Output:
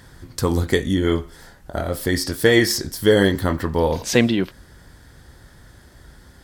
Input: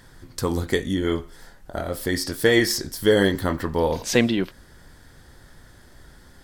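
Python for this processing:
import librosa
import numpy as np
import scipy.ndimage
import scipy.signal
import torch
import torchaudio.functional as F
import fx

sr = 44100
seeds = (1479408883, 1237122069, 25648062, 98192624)

p1 = scipy.signal.sosfilt(scipy.signal.butter(2, 44.0, 'highpass', fs=sr, output='sos'), x)
p2 = fx.low_shelf(p1, sr, hz=91.0, db=7.0)
p3 = fx.rider(p2, sr, range_db=10, speed_s=2.0)
p4 = p2 + (p3 * 10.0 ** (0.0 / 20.0))
y = p4 * 10.0 ** (-3.5 / 20.0)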